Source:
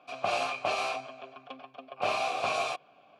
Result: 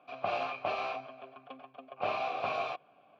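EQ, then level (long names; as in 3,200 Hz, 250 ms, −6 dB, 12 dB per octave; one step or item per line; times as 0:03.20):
high-frequency loss of the air 270 metres
−2.0 dB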